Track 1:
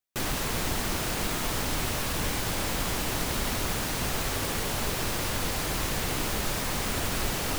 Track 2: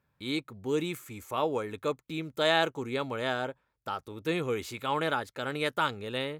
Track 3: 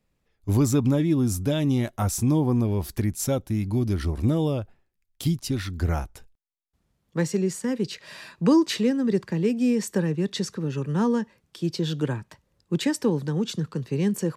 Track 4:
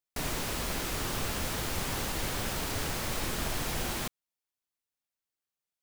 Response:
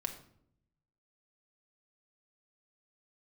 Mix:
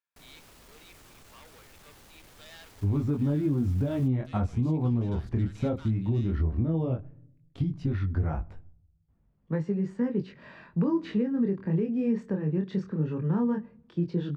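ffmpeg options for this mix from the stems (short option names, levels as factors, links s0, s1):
-filter_complex "[1:a]asoftclip=type=tanh:threshold=0.0355,bandpass=f=3600:t=q:w=0.7:csg=0,volume=0.178,asplit=2[s0][s1];[s1]volume=0.596[s2];[2:a]lowpass=1700,lowshelf=f=210:g=7.5,flanger=delay=19:depth=7.5:speed=0.15,adelay=2350,volume=0.841,asplit=2[s3][s4];[s4]volume=0.188[s5];[3:a]asoftclip=type=tanh:threshold=0.0224,volume=0.141[s6];[4:a]atrim=start_sample=2205[s7];[s2][s5]amix=inputs=2:normalize=0[s8];[s8][s7]afir=irnorm=-1:irlink=0[s9];[s0][s3][s6][s9]amix=inputs=4:normalize=0,alimiter=limit=0.119:level=0:latency=1:release=256"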